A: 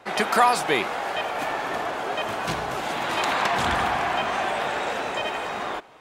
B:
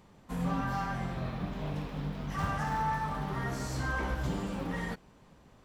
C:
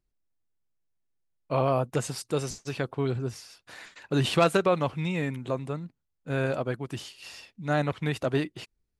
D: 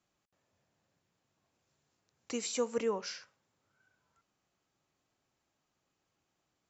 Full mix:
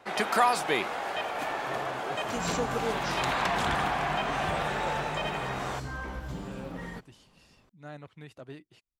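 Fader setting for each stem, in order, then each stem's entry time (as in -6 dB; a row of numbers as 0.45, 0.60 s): -5.0, -4.5, -18.0, -0.5 dB; 0.00, 2.05, 0.15, 0.00 s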